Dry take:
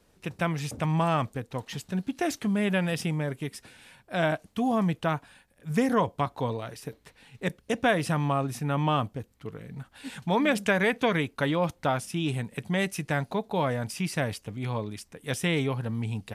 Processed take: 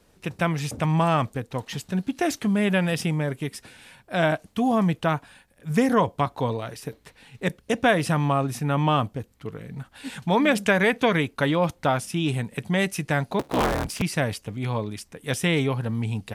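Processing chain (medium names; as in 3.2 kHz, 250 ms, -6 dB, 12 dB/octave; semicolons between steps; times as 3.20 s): 13.39–14.02 s: cycle switcher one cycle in 3, inverted; trim +4 dB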